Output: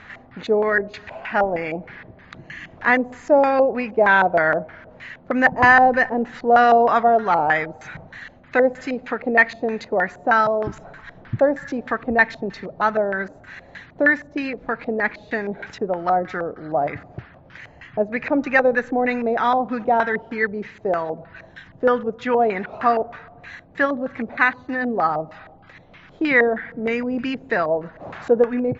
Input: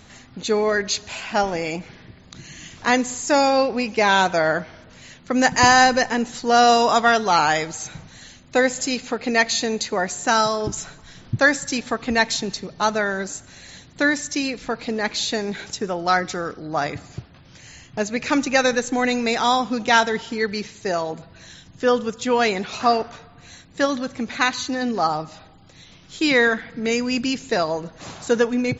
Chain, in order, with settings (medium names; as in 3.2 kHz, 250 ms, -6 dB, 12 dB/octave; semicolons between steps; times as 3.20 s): LFO low-pass square 3.2 Hz 650–1800 Hz; tape noise reduction on one side only encoder only; trim -2 dB